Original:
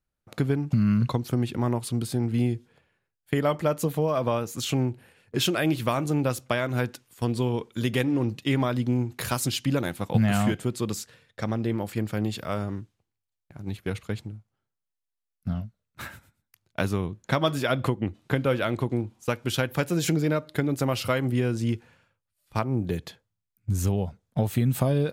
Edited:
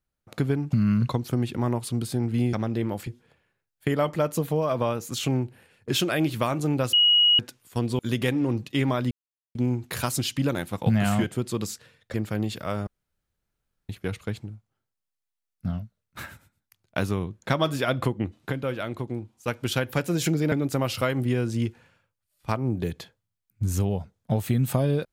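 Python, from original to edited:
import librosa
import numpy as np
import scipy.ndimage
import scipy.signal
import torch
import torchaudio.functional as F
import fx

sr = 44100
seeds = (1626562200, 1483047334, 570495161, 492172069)

y = fx.edit(x, sr, fx.bleep(start_s=6.39, length_s=0.46, hz=2900.0, db=-15.0),
    fx.cut(start_s=7.45, length_s=0.26),
    fx.insert_silence(at_s=8.83, length_s=0.44),
    fx.move(start_s=11.42, length_s=0.54, to_s=2.53),
    fx.room_tone_fill(start_s=12.69, length_s=1.02),
    fx.clip_gain(start_s=18.33, length_s=0.97, db=-5.0),
    fx.cut(start_s=20.34, length_s=0.25), tone=tone)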